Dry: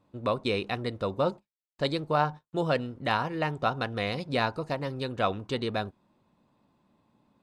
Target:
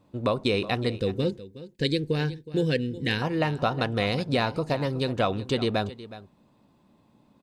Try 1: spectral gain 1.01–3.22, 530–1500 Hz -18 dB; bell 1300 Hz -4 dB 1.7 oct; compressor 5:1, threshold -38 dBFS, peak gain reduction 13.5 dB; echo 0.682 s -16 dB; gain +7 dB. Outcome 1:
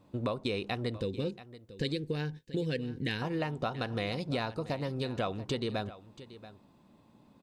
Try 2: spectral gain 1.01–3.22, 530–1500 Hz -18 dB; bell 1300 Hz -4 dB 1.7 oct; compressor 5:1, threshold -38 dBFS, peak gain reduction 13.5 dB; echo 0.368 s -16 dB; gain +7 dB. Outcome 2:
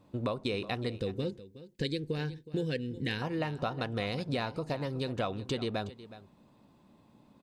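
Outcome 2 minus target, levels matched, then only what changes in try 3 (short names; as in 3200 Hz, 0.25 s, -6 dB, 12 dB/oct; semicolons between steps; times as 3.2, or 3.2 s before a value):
compressor: peak gain reduction +9 dB
change: compressor 5:1, threshold -27 dBFS, peak gain reduction 4.5 dB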